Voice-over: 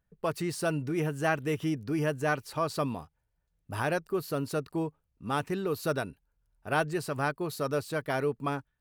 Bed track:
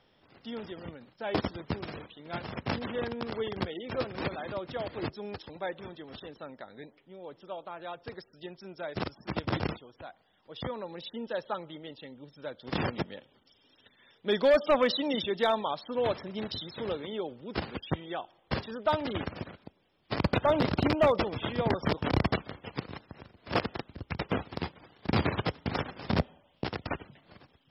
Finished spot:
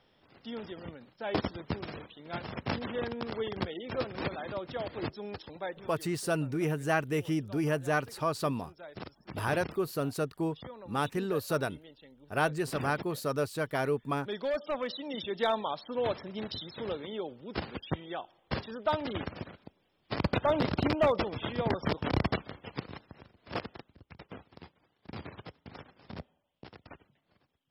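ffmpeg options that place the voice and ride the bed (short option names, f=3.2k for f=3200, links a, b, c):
-filter_complex "[0:a]adelay=5650,volume=-0.5dB[a];[1:a]volume=6.5dB,afade=t=out:st=5.55:d=0.51:silence=0.375837,afade=t=in:st=15.05:d=0.41:silence=0.421697,afade=t=out:st=22.89:d=1.17:silence=0.199526[b];[a][b]amix=inputs=2:normalize=0"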